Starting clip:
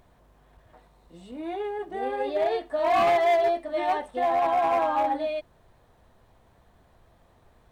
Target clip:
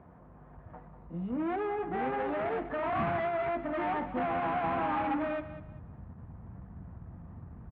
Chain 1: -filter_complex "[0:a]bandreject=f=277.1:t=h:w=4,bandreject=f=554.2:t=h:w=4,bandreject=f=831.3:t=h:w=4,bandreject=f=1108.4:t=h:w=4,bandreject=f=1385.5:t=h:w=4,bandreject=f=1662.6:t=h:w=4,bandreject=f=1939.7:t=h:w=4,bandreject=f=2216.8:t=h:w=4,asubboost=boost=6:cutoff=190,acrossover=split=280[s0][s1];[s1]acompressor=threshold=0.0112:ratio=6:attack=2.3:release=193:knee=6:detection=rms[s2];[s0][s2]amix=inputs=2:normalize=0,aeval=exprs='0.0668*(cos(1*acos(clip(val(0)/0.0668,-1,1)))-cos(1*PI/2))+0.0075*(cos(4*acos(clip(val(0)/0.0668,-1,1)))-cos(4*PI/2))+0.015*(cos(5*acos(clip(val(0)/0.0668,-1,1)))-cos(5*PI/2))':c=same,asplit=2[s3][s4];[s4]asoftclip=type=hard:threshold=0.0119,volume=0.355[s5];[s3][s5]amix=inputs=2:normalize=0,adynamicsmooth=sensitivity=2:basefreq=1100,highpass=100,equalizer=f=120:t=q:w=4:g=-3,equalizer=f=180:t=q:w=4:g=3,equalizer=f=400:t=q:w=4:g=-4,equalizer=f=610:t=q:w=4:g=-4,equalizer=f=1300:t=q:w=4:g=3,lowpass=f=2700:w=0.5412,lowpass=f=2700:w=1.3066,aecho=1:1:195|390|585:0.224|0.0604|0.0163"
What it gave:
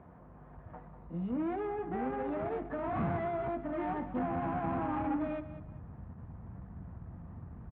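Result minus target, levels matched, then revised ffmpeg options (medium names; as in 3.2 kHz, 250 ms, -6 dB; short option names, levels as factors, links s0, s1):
compression: peak gain reduction +9 dB
-filter_complex "[0:a]bandreject=f=277.1:t=h:w=4,bandreject=f=554.2:t=h:w=4,bandreject=f=831.3:t=h:w=4,bandreject=f=1108.4:t=h:w=4,bandreject=f=1385.5:t=h:w=4,bandreject=f=1662.6:t=h:w=4,bandreject=f=1939.7:t=h:w=4,bandreject=f=2216.8:t=h:w=4,asubboost=boost=6:cutoff=190,acrossover=split=280[s0][s1];[s1]acompressor=threshold=0.0376:ratio=6:attack=2.3:release=193:knee=6:detection=rms[s2];[s0][s2]amix=inputs=2:normalize=0,aeval=exprs='0.0668*(cos(1*acos(clip(val(0)/0.0668,-1,1)))-cos(1*PI/2))+0.0075*(cos(4*acos(clip(val(0)/0.0668,-1,1)))-cos(4*PI/2))+0.015*(cos(5*acos(clip(val(0)/0.0668,-1,1)))-cos(5*PI/2))':c=same,asplit=2[s3][s4];[s4]asoftclip=type=hard:threshold=0.0119,volume=0.355[s5];[s3][s5]amix=inputs=2:normalize=0,adynamicsmooth=sensitivity=2:basefreq=1100,highpass=100,equalizer=f=120:t=q:w=4:g=-3,equalizer=f=180:t=q:w=4:g=3,equalizer=f=400:t=q:w=4:g=-4,equalizer=f=610:t=q:w=4:g=-4,equalizer=f=1300:t=q:w=4:g=3,lowpass=f=2700:w=0.5412,lowpass=f=2700:w=1.3066,aecho=1:1:195|390|585:0.224|0.0604|0.0163"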